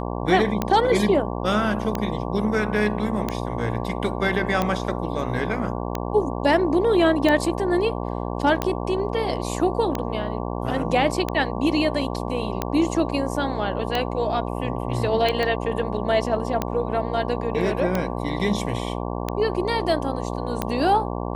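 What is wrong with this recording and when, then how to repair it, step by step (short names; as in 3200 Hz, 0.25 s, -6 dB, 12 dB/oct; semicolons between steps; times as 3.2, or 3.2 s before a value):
buzz 60 Hz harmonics 19 -28 dBFS
tick 45 rpm -9 dBFS
15.43 pop -12 dBFS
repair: de-click; de-hum 60 Hz, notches 19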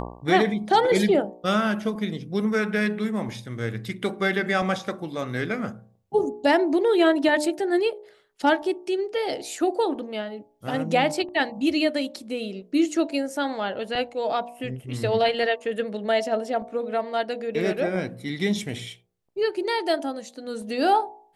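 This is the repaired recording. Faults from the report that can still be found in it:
15.43 pop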